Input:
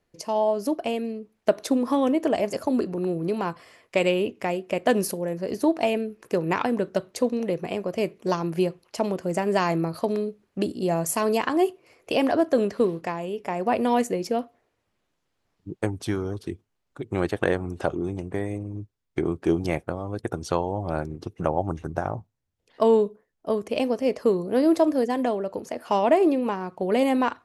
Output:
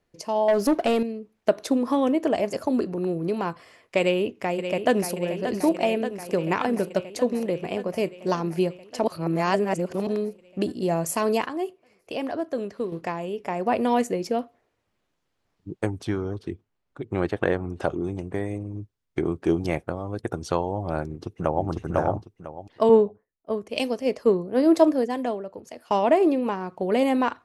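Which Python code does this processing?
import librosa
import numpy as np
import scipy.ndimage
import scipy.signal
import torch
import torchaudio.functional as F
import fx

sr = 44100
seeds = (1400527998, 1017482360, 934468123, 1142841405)

y = fx.leveller(x, sr, passes=2, at=(0.48, 1.03))
y = fx.echo_throw(y, sr, start_s=4.0, length_s=1.15, ms=580, feedback_pct=75, wet_db=-8.5)
y = fx.high_shelf(y, sr, hz=6100.0, db=-12.0, at=(16.03, 17.8))
y = fx.echo_throw(y, sr, start_s=21.06, length_s=0.61, ms=500, feedback_pct=20, wet_db=0.0)
y = fx.band_widen(y, sr, depth_pct=100, at=(22.89, 25.91))
y = fx.edit(y, sr, fx.reverse_span(start_s=9.04, length_s=1.03),
    fx.clip_gain(start_s=11.46, length_s=1.46, db=-7.5), tone=tone)
y = fx.high_shelf(y, sr, hz=10000.0, db=-5.0)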